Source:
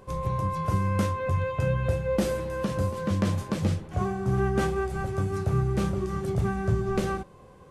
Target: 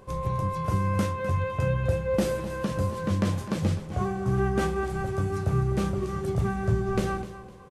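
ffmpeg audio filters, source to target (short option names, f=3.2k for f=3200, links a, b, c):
-af "aecho=1:1:254|508|762:0.2|0.0638|0.0204"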